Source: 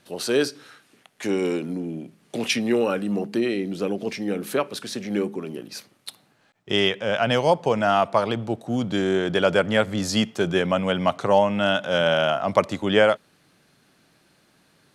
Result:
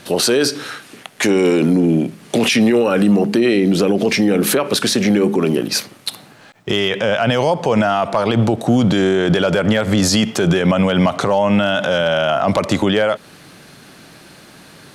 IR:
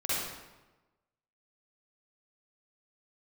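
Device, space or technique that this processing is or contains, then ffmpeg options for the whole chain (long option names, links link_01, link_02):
loud club master: -af "acompressor=threshold=-22dB:ratio=2.5,asoftclip=type=hard:threshold=-13dB,alimiter=level_in=24dB:limit=-1dB:release=50:level=0:latency=1,volume=-5.5dB"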